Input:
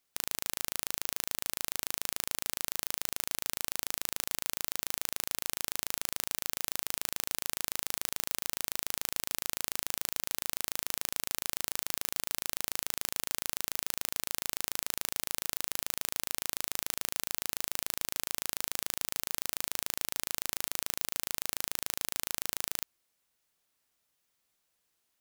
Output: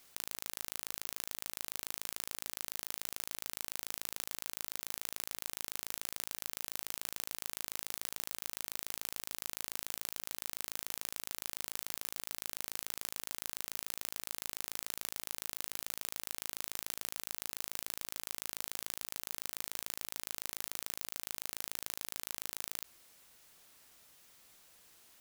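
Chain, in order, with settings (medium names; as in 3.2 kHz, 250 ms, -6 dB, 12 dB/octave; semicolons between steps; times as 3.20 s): compressor with a negative ratio -43 dBFS, ratio -0.5; trim +5 dB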